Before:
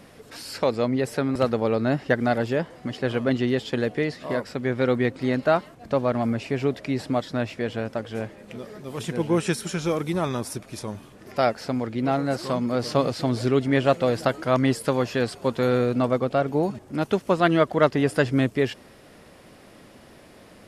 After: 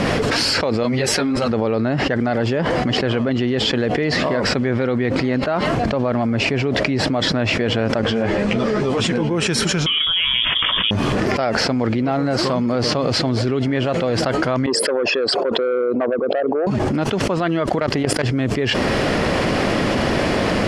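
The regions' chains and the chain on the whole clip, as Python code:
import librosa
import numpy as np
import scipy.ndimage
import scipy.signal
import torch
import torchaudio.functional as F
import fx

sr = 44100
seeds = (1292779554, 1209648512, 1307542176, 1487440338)

y = fx.chain(x, sr, fx.high_shelf(hz=2400.0, db=9.5),
    fx.ensemble(), at=(0.83, 1.48))
y = fx.chain(y, sr, fx.lowpass(hz=9500.0, slope=24),
    fx.ensemble(), at=(8.02, 9.31))
y = fx.chain(y, sr, fx.doubler(ms=20.0, db=-12.0),
    fx.freq_invert(carrier_hz=3500),
    fx.notch(hz=850.0, q=7.8), at=(9.86, 10.91))
y = fx.chain(y, sr, fx.envelope_sharpen(power=2.0),
    fx.highpass(hz=530.0, slope=12),
    fx.transformer_sat(knee_hz=790.0), at=(14.66, 16.67))
y = fx.chain(y, sr, fx.high_shelf(hz=9000.0, db=11.5),
    fx.level_steps(step_db=18),
    fx.doppler_dist(depth_ms=0.26), at=(17.66, 18.29))
y = scipy.signal.sosfilt(scipy.signal.butter(2, 5300.0, 'lowpass', fs=sr, output='sos'), y)
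y = fx.notch(y, sr, hz=3700.0, q=19.0)
y = fx.env_flatten(y, sr, amount_pct=100)
y = y * librosa.db_to_amplitude(-4.0)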